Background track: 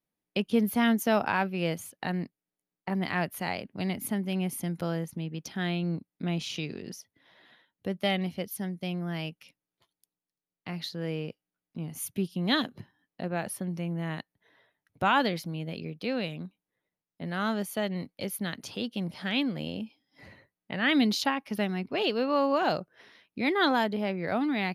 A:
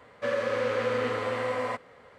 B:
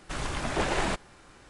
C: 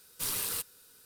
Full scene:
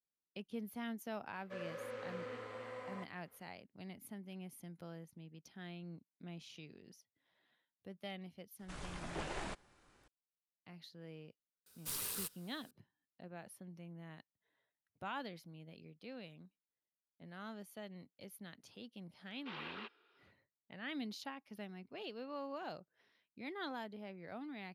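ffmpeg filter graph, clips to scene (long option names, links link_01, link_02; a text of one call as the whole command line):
ffmpeg -i bed.wav -i cue0.wav -i cue1.wav -i cue2.wav -filter_complex "[3:a]asplit=2[link_01][link_02];[0:a]volume=-19dB[link_03];[link_02]highpass=frequency=410:width_type=q:width=0.5412,highpass=frequency=410:width_type=q:width=1.307,lowpass=frequency=3200:width_type=q:width=0.5176,lowpass=frequency=3200:width_type=q:width=0.7071,lowpass=frequency=3200:width_type=q:width=1.932,afreqshift=-67[link_04];[1:a]atrim=end=2.18,asetpts=PTS-STARTPTS,volume=-18dB,afade=type=in:duration=0.004:curve=hsin,afade=type=out:start_time=2.176:duration=0.004:curve=hsin,adelay=1280[link_05];[2:a]atrim=end=1.49,asetpts=PTS-STARTPTS,volume=-15dB,afade=type=in:duration=0.004:curve=hsin,afade=type=out:start_time=1.486:duration=0.004:curve=hsin,adelay=8590[link_06];[link_01]atrim=end=1.05,asetpts=PTS-STARTPTS,volume=-8dB,afade=type=in:duration=0.004:curve=hsin,afade=type=out:start_time=1.046:duration=0.004:curve=hsin,adelay=11660[link_07];[link_04]atrim=end=1.05,asetpts=PTS-STARTPTS,volume=-3.5dB,afade=type=in:duration=0.004:curve=hsin,afade=type=out:start_time=1.046:duration=0.004:curve=hsin,adelay=19260[link_08];[link_03][link_05][link_06][link_07][link_08]amix=inputs=5:normalize=0" out.wav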